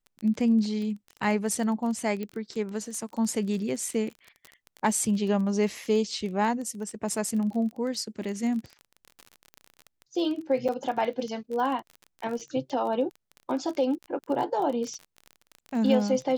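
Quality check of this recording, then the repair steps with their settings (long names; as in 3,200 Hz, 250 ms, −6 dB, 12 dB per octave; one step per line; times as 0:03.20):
surface crackle 24 per second −33 dBFS
0:02.23: click −22 dBFS
0:10.68–0:10.69: drop-out 6.4 ms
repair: click removal
repair the gap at 0:10.68, 6.4 ms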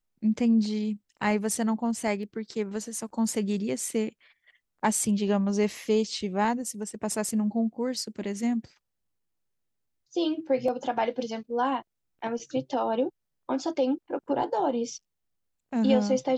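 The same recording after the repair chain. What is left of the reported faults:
0:02.23: click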